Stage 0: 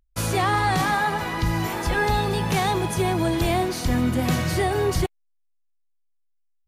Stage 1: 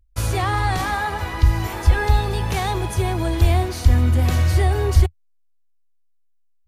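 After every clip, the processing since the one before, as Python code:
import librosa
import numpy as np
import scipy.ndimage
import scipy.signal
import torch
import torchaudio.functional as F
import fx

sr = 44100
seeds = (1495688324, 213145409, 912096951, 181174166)

y = fx.low_shelf_res(x, sr, hz=110.0, db=9.5, q=3.0)
y = F.gain(torch.from_numpy(y), -1.0).numpy()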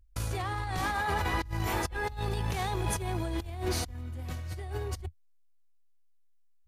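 y = fx.over_compress(x, sr, threshold_db=-26.0, ratio=-1.0)
y = F.gain(torch.from_numpy(y), -8.0).numpy()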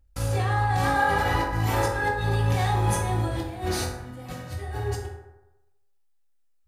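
y = fx.rev_fdn(x, sr, rt60_s=1.0, lf_ratio=0.85, hf_ratio=0.45, size_ms=11.0, drr_db=-5.0)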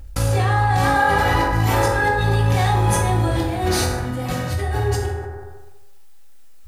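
y = fx.env_flatten(x, sr, amount_pct=50)
y = F.gain(torch.from_numpy(y), 4.5).numpy()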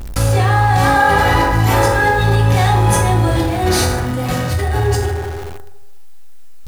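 y = x + 0.5 * 10.0 ** (-30.5 / 20.0) * np.sign(x)
y = F.gain(torch.from_numpy(y), 4.0).numpy()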